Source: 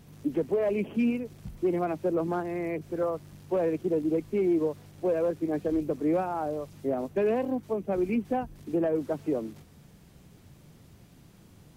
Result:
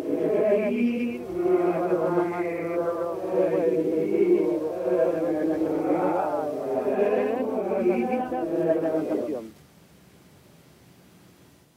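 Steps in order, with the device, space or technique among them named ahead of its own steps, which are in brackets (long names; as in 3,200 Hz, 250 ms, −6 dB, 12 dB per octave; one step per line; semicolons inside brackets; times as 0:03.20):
ghost voice (reversed playback; convolution reverb RT60 1.4 s, pre-delay 113 ms, DRR −4.5 dB; reversed playback; high-pass filter 320 Hz 6 dB per octave)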